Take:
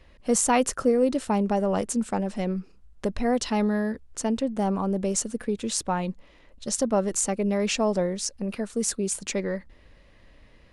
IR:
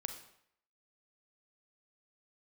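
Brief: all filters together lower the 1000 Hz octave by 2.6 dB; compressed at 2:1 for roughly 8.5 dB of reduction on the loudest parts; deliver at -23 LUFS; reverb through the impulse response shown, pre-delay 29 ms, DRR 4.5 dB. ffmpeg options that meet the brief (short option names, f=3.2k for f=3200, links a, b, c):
-filter_complex "[0:a]equalizer=f=1k:t=o:g=-3.5,acompressor=threshold=-33dB:ratio=2,asplit=2[a][b];[1:a]atrim=start_sample=2205,adelay=29[c];[b][c]afir=irnorm=-1:irlink=0,volume=-3.5dB[d];[a][d]amix=inputs=2:normalize=0,volume=8.5dB"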